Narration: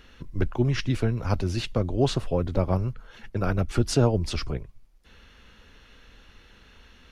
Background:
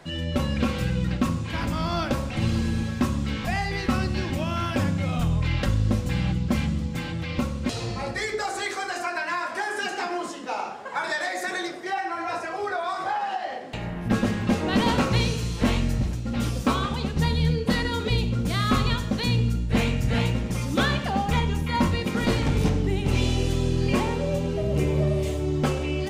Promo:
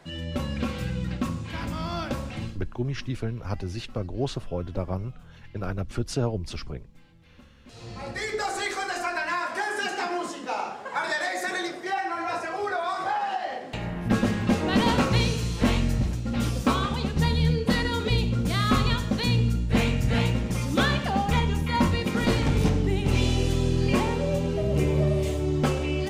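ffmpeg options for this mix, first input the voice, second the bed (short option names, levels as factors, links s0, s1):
-filter_complex "[0:a]adelay=2200,volume=0.531[s0];[1:a]volume=13.3,afade=t=out:st=2.32:d=0.26:silence=0.0749894,afade=t=in:st=7.66:d=0.78:silence=0.0446684[s1];[s0][s1]amix=inputs=2:normalize=0"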